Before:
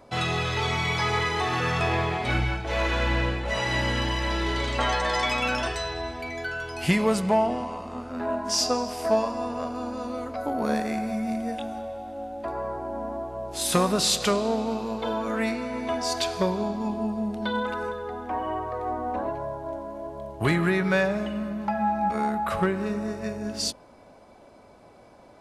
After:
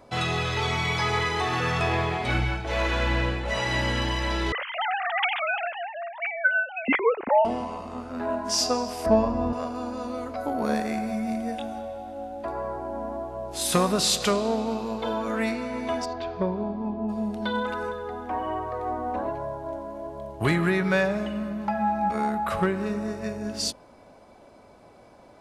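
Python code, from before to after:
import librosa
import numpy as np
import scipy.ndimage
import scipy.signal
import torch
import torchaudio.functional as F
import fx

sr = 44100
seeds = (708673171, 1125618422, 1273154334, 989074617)

y = fx.sine_speech(x, sr, at=(4.52, 7.45))
y = fx.riaa(y, sr, side='playback', at=(9.06, 9.53))
y = fx.spacing_loss(y, sr, db_at_10k=42, at=(16.04, 17.08), fade=0.02)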